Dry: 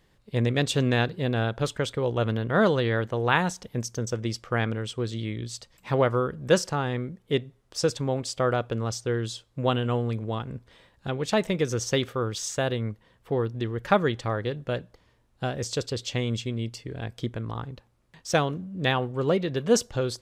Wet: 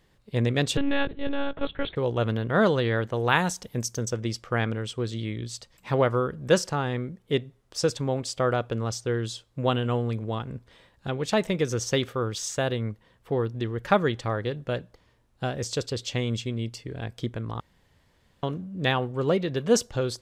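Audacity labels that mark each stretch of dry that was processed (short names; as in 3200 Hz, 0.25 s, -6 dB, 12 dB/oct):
0.770000	1.960000	monotone LPC vocoder at 8 kHz 280 Hz
3.140000	4.090000	high shelf 6600 Hz +8.5 dB
17.600000	18.430000	room tone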